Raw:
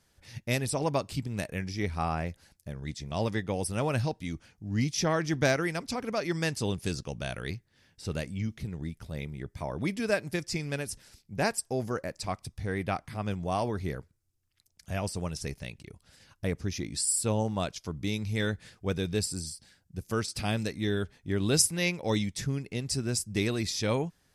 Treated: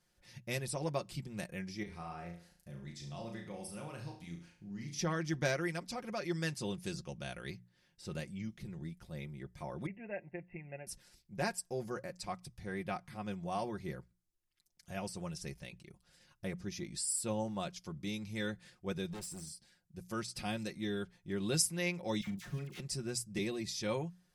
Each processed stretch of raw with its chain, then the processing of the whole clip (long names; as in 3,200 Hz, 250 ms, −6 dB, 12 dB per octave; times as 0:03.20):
0:01.83–0:04.99: downward compressor 2.5 to 1, threshold −38 dBFS + flutter between parallel walls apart 6 metres, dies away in 0.46 s
0:09.86–0:10.87: Chebyshev low-pass with heavy ripple 2,800 Hz, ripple 9 dB + parametric band 1,200 Hz −15 dB 0.31 octaves
0:19.10–0:19.50: parametric band 4,600 Hz −9.5 dB 0.32 octaves + hard clipping −33 dBFS
0:22.21–0:22.80: gap after every zero crossing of 0.15 ms + double-tracking delay 41 ms −9 dB + all-pass dispersion lows, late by 62 ms, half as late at 1,200 Hz
0:23.38–0:23.81: parametric band 1,400 Hz −14.5 dB 0.25 octaves + multiband upward and downward expander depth 40%
whole clip: mains-hum notches 60/120/180 Hz; comb filter 5.6 ms, depth 65%; level −9 dB